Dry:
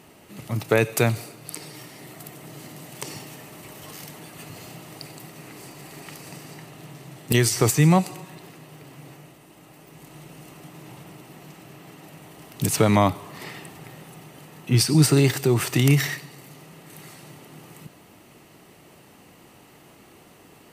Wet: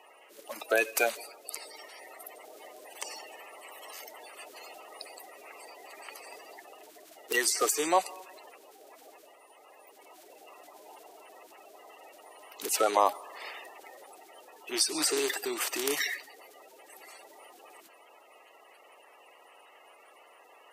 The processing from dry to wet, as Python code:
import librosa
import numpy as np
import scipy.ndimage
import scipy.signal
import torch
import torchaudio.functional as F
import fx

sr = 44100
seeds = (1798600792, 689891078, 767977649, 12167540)

y = fx.spec_quant(x, sr, step_db=30)
y = scipy.signal.sosfilt(scipy.signal.butter(4, 460.0, 'highpass', fs=sr, output='sos'), y)
y = y * librosa.db_to_amplitude(-3.0)